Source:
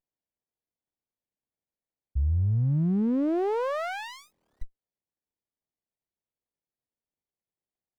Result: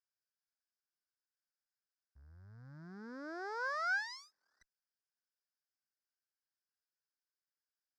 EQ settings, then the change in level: double band-pass 2800 Hz, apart 1.7 oct; +7.0 dB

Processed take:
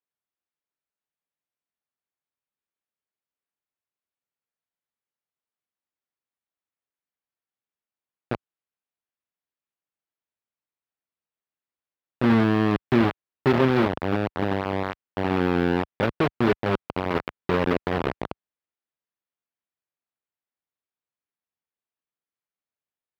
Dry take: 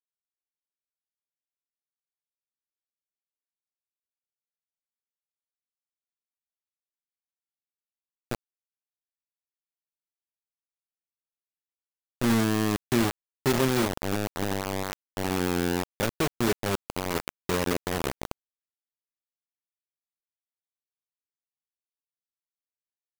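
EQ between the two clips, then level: HPF 63 Hz 12 dB/oct; air absorption 380 m; low shelf 400 Hz -2.5 dB; +7.0 dB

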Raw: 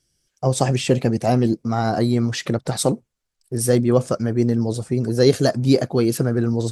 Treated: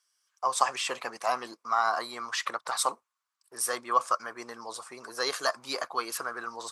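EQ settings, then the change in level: resonant high-pass 1100 Hz, resonance Q 6.1; -5.0 dB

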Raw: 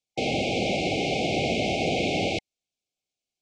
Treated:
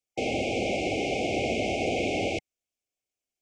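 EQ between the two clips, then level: fifteen-band EQ 160 Hz -10 dB, 1000 Hz -6 dB, 4000 Hz -10 dB; 0.0 dB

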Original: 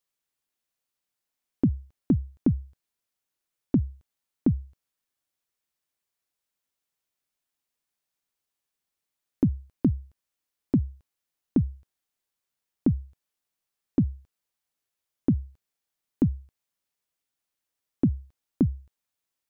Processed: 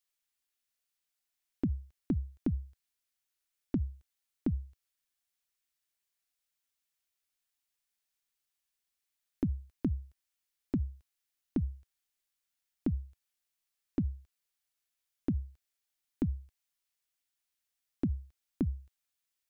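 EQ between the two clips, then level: graphic EQ 125/250/500/1000 Hz -11/-6/-7/-5 dB; 0.0 dB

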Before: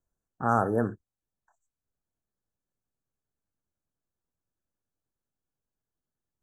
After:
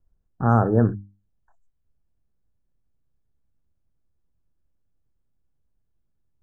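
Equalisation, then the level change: RIAA curve playback; notches 50/100/150/200/250/300 Hz; +2.0 dB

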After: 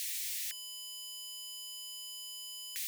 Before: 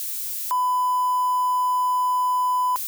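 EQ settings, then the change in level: steep high-pass 1800 Hz 72 dB/oct; tilt -5 dB/oct; +9.5 dB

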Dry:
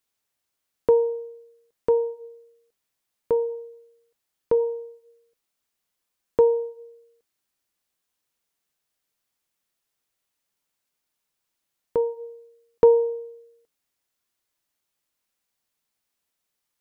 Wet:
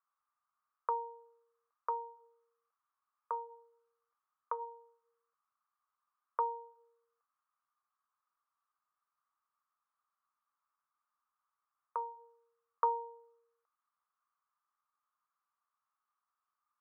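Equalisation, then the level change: HPF 860 Hz 24 dB/oct; synth low-pass 1200 Hz, resonance Q 8.8; air absorption 350 m; -5.0 dB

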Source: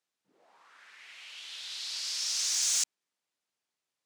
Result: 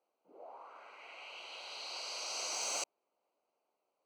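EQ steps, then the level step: running mean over 25 samples; HPF 390 Hz 12 dB/oct; bell 610 Hz +6 dB 1.2 oct; +12.5 dB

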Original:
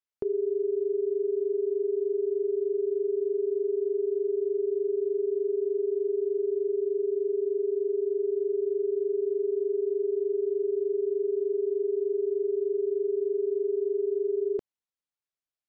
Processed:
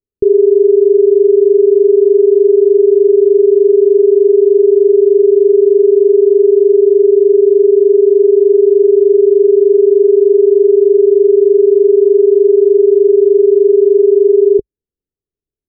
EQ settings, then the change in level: synth low-pass 410 Hz, resonance Q 4.9; tilt -5.5 dB/oct; -1.0 dB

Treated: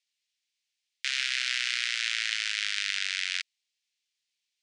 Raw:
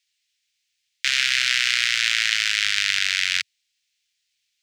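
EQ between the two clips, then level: HPF 440 Hz 24 dB/oct; elliptic low-pass 10000 Hz, stop band 80 dB; -8.5 dB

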